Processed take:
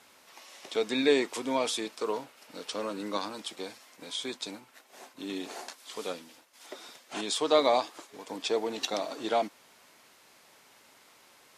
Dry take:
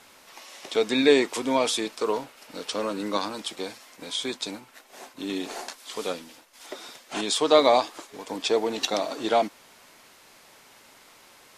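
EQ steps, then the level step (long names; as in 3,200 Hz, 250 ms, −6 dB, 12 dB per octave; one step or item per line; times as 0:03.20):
high-pass filter 87 Hz 6 dB per octave
−5.5 dB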